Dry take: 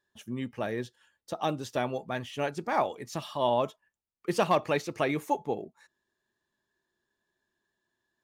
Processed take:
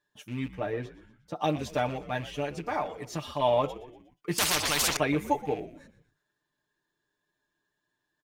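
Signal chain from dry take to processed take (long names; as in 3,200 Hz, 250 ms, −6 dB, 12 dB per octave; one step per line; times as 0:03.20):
loose part that buzzes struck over −39 dBFS, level −37 dBFS
parametric band 12,000 Hz −2 dB 1.8 octaves
comb filter 6.7 ms, depth 78%
0:00.55–0:01.36: high-shelf EQ 2,600 Hz −11 dB
0:02.32–0:03.38: downward compressor 2.5 to 1, threshold −28 dBFS, peak gain reduction 6.5 dB
echo with shifted repeats 120 ms, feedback 49%, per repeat −78 Hz, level −16 dB
0:04.38–0:04.97: every bin compressed towards the loudest bin 10 to 1
level −1 dB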